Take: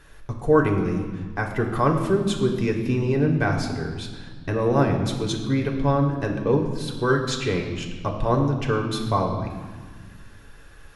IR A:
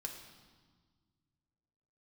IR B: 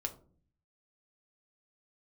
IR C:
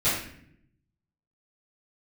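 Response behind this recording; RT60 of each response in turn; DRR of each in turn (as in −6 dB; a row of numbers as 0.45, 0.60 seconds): A; 1.6, 0.45, 0.65 seconds; 1.0, 4.0, −14.5 decibels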